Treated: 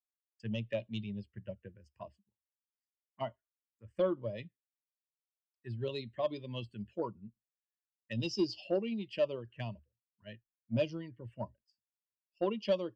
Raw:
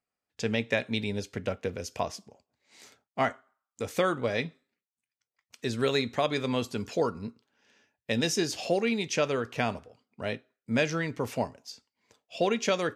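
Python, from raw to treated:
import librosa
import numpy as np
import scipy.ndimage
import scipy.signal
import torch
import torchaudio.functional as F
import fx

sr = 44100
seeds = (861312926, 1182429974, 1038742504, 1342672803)

y = fx.bin_expand(x, sr, power=1.5)
y = fx.ripple_eq(y, sr, per_octave=1.3, db=11)
y = fx.env_phaser(y, sr, low_hz=520.0, high_hz=1700.0, full_db=-26.5)
y = fx.air_absorb(y, sr, metres=140.0)
y = 10.0 ** (-18.0 / 20.0) * np.tanh(y / 10.0 ** (-18.0 / 20.0))
y = fx.band_widen(y, sr, depth_pct=70)
y = F.gain(torch.from_numpy(y), -5.5).numpy()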